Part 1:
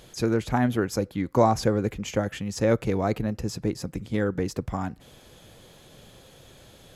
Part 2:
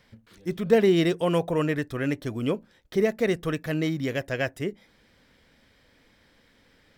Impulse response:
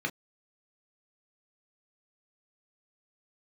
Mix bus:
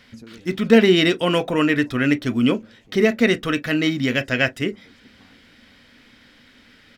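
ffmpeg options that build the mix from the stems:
-filter_complex "[0:a]acompressor=threshold=-29dB:ratio=3,volume=-16dB,asplit=2[a][b];[b]volume=-9.5dB[c];[1:a]equalizer=f=2.6k:w=0.57:g=13,volume=2dB,asplit=3[d][e][f];[e]volume=-14.5dB[g];[f]apad=whole_len=306727[h];[a][h]sidechaincompress=threshold=-42dB:ratio=8:attack=46:release=390[i];[2:a]atrim=start_sample=2205[j];[g][j]afir=irnorm=-1:irlink=0[k];[c]aecho=0:1:469|938|1407|1876|2345|2814:1|0.44|0.194|0.0852|0.0375|0.0165[l];[i][d][k][l]amix=inputs=4:normalize=0,equalizer=f=250:w=3.9:g=12"

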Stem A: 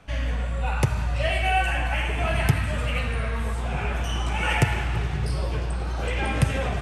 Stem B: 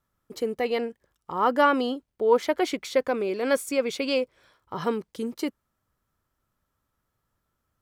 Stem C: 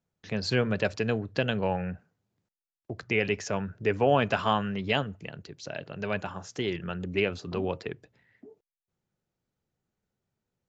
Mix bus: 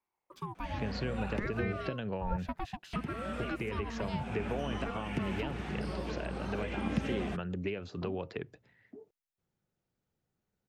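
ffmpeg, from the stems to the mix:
-filter_complex "[0:a]acrossover=split=330|3000[a][b][c];[b]acompressor=threshold=-33dB:ratio=6[d];[a][d][c]amix=inputs=3:normalize=0,lowshelf=f=160:t=q:w=3:g=-9,adelay=550,volume=-5dB,asplit=3[e][f][g];[e]atrim=end=1.88,asetpts=PTS-STARTPTS,afade=t=out:st=1.876:d=0.004:c=hsin[h];[f]atrim=start=1.88:end=2.93,asetpts=PTS-STARTPTS,volume=0[i];[g]atrim=start=2.93,asetpts=PTS-STARTPTS,afade=t=in:d=0.004:c=hsin[j];[h][i][j]concat=n=3:v=0:a=1[k];[1:a]aeval=exprs='val(0)*sin(2*PI*660*n/s+660*0.45/0.6*sin(2*PI*0.6*n/s))':c=same,volume=-9dB,asplit=2[l][m];[2:a]acompressor=threshold=-31dB:ratio=6,adelay=500,volume=-0.5dB[n];[m]apad=whole_len=324886[o];[k][o]sidechaincompress=threshold=-35dB:ratio=8:attack=8.9:release=609[p];[p][l][n]amix=inputs=3:normalize=0,acrossover=split=4300[q][r];[r]acompressor=threshold=-55dB:ratio=4:attack=1:release=60[s];[q][s]amix=inputs=2:normalize=0,equalizer=f=8.8k:w=0.43:g=-3,acrossover=split=480[t][u];[u]acompressor=threshold=-38dB:ratio=6[v];[t][v]amix=inputs=2:normalize=0"

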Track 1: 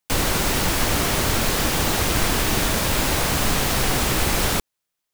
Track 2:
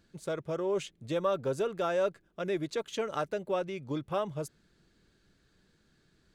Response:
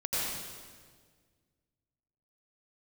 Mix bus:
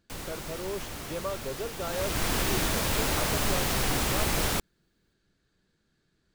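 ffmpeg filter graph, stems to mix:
-filter_complex "[0:a]volume=-6.5dB,afade=t=in:st=1.79:d=0.56:silence=0.266073[a];[1:a]volume=-5dB[b];[a][b]amix=inputs=2:normalize=0"

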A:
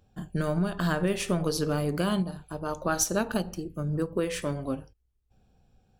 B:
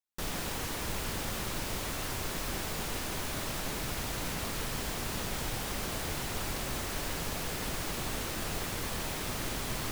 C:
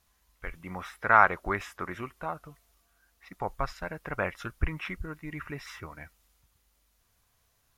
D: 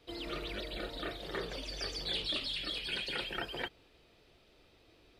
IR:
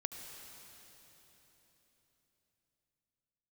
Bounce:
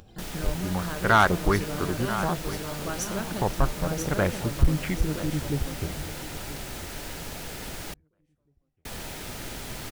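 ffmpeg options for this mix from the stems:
-filter_complex "[0:a]acompressor=mode=upward:threshold=-30dB:ratio=2.5,volume=-7dB,asplit=2[a][b];[b]volume=-4dB[c];[1:a]bandreject=f=1.1k:w=7.4,volume=-1.5dB,asplit=3[d][e][f];[d]atrim=end=7.94,asetpts=PTS-STARTPTS,afade=t=out:st=7.936:d=0.004:c=hsin[g];[e]atrim=start=7.94:end=8.85,asetpts=PTS-STARTPTS,volume=0[h];[f]atrim=start=8.85,asetpts=PTS-STARTPTS,afade=t=in:d=0.004:c=hsin[i];[g][h][i]concat=n=3:v=0:a=1[j];[2:a]lowshelf=f=430:g=11.5,afwtdn=0.02,volume=2.5dB,asplit=2[k][l];[l]volume=-15.5dB[m];[3:a]volume=-16dB[n];[c][m]amix=inputs=2:normalize=0,aecho=0:1:985|1970|2955|3940:1|0.22|0.0484|0.0106[o];[a][j][k][n][o]amix=inputs=5:normalize=0,asoftclip=type=tanh:threshold=-9.5dB"

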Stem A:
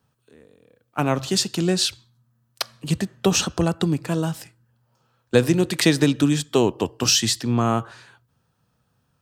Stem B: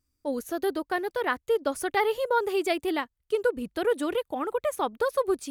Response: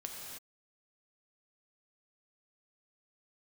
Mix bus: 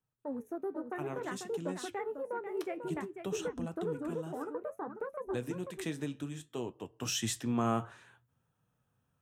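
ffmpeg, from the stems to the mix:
-filter_complex "[0:a]volume=-5.5dB,afade=t=in:st=6.86:d=0.49:silence=0.298538[a];[1:a]afwtdn=0.0224,equalizer=f=3.3k:w=5.4:g=-13.5,acrossover=split=270[b][c];[c]acompressor=threshold=-36dB:ratio=3[d];[b][d]amix=inputs=2:normalize=0,volume=-0.5dB,asplit=2[e][f];[f]volume=-8dB,aecho=0:1:493:1[g];[a][e][g]amix=inputs=3:normalize=0,equalizer=f=4.6k:t=o:w=0.36:g=-14.5,flanger=delay=6.4:depth=7.3:regen=-65:speed=0.58:shape=sinusoidal"

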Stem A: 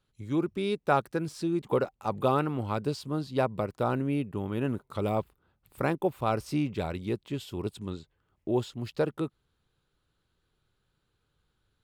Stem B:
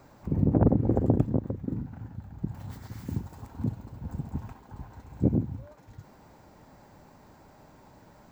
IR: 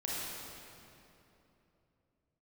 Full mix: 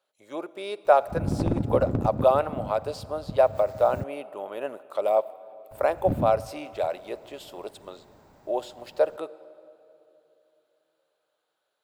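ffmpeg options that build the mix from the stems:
-filter_complex "[0:a]highpass=f=610:t=q:w=4.9,highshelf=f=9.4k:g=4,volume=-2dB,asplit=2[a][b];[b]volume=-20.5dB[c];[1:a]aeval=exprs='clip(val(0),-1,0.0841)':c=same,adelay=850,volume=-2.5dB,asplit=3[d][e][f];[d]atrim=end=4.04,asetpts=PTS-STARTPTS,afade=t=out:st=4.036:d=0.004:c=hsin[g];[e]atrim=start=4.04:end=5.71,asetpts=PTS-STARTPTS,volume=0[h];[f]atrim=start=5.71,asetpts=PTS-STARTPTS,afade=t=in:d=0.004:c=hsin[i];[g][h][i]concat=n=3:v=0:a=1[j];[2:a]atrim=start_sample=2205[k];[c][k]afir=irnorm=-1:irlink=0[l];[a][j][l]amix=inputs=3:normalize=0"

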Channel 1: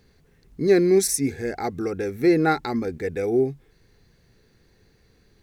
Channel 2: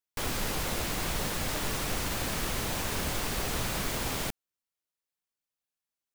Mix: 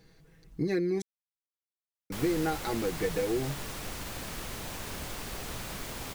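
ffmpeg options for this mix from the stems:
-filter_complex "[0:a]aecho=1:1:6.2:0.76,acompressor=threshold=-25dB:ratio=6,volume=-2dB,asplit=3[a][b][c];[a]atrim=end=1.02,asetpts=PTS-STARTPTS,afade=t=out:st=1.016:d=0.004:c=hsin[d];[b]atrim=start=1.02:end=2.1,asetpts=PTS-STARTPTS,volume=0[e];[c]atrim=start=2.1,asetpts=PTS-STARTPTS,afade=t=in:d=0.004:c=hsin[f];[d][e][f]concat=n=3:v=0:a=1[g];[1:a]adelay=1950,volume=-7dB[h];[g][h]amix=inputs=2:normalize=0"

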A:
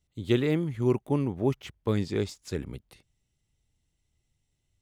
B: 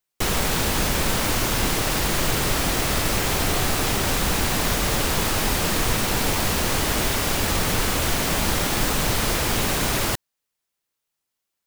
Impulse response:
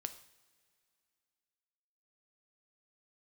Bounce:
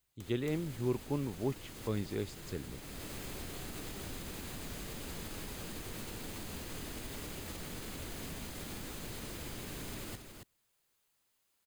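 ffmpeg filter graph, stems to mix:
-filter_complex "[0:a]volume=-11.5dB,asplit=2[a][b];[1:a]acrossover=split=200|430|1500|4100[c][d][e][f][g];[c]acompressor=threshold=-31dB:ratio=4[h];[d]acompressor=threshold=-34dB:ratio=4[i];[e]acompressor=threshold=-45dB:ratio=4[j];[f]acompressor=threshold=-40dB:ratio=4[k];[g]acompressor=threshold=-35dB:ratio=4[l];[h][i][j][k][l]amix=inputs=5:normalize=0,alimiter=level_in=3dB:limit=-24dB:level=0:latency=1:release=313,volume=-3dB,acompressor=threshold=-46dB:ratio=4,volume=-1.5dB,asplit=3[m][n][o];[n]volume=-10dB[p];[o]volume=-5.5dB[q];[b]apad=whole_len=514372[r];[m][r]sidechaincompress=threshold=-56dB:ratio=4:attack=6.2:release=282[s];[2:a]atrim=start_sample=2205[t];[p][t]afir=irnorm=-1:irlink=0[u];[q]aecho=0:1:276:1[v];[a][s][u][v]amix=inputs=4:normalize=0,bandreject=f=5.6k:w=11,dynaudnorm=f=250:g=3:m=3dB"

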